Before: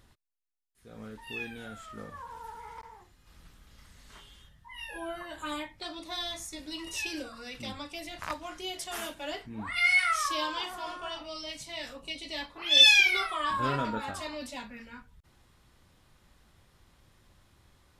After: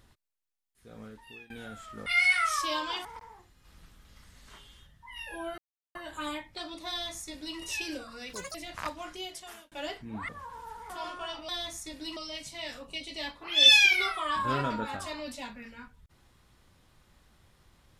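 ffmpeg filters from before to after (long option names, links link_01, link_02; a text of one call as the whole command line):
ffmpeg -i in.wav -filter_complex "[0:a]asplit=12[link_01][link_02][link_03][link_04][link_05][link_06][link_07][link_08][link_09][link_10][link_11][link_12];[link_01]atrim=end=1.5,asetpts=PTS-STARTPTS,afade=type=out:start_time=0.92:duration=0.58:silence=0.0841395[link_13];[link_02]atrim=start=1.5:end=2.062,asetpts=PTS-STARTPTS,afade=type=in:duration=0.004:curve=hsin:silence=0.0841395[link_14];[link_03]atrim=start=9.728:end=10.722[link_15];[link_04]atrim=start=2.668:end=5.2,asetpts=PTS-STARTPTS,afade=type=out:start_time=2.528:duration=0.004:curve=hsin,apad=pad_dur=0.37[link_16];[link_05]atrim=start=5.2:end=7.584,asetpts=PTS-STARTPTS,afade=type=in:duration=0.004:curve=hsin[link_17];[link_06]atrim=start=7.58:end=7.99,asetpts=PTS-STARTPTS,asetrate=83790,aresample=44100,atrim=end_sample=9516,asetpts=PTS-STARTPTS[link_18];[link_07]atrim=start=7.986:end=9.16,asetpts=PTS-STARTPTS,afade=type=out:start_time=0.544:duration=0.63[link_19];[link_08]atrim=start=9.16:end=9.732,asetpts=PTS-STARTPTS,afade=type=in:duration=0.004:curve=hsin[link_20];[link_09]atrim=start=2.058:end=2.672[link_21];[link_10]atrim=start=10.718:end=11.312[link_22];[link_11]atrim=start=6.148:end=6.832[link_23];[link_12]atrim=start=11.308[link_24];[link_13][link_14]concat=n=2:v=0:a=1[link_25];[link_25][link_15]acrossfade=duration=0.004:curve1=hsin:curve2=hsin[link_26];[link_16][link_17]concat=n=2:v=0:a=1[link_27];[link_26][link_27]acrossfade=duration=0.004:curve1=hsin:curve2=hsin[link_28];[link_28][link_18]acrossfade=duration=0.004:curve1=hsin:curve2=hsin[link_29];[link_19][link_20]concat=n=2:v=0:a=1[link_30];[link_29][link_30]acrossfade=duration=0.004:curve1=hsin:curve2=hsin[link_31];[link_31][link_21]acrossfade=duration=0.004:curve1=hsin:curve2=hsin[link_32];[link_32][link_22]acrossfade=duration=0.004:curve1=hsin:curve2=hsin[link_33];[link_33][link_23]acrossfade=duration=0.004:curve1=hsin:curve2=hsin[link_34];[link_34][link_24]acrossfade=duration=0.004:curve1=hsin:curve2=hsin" out.wav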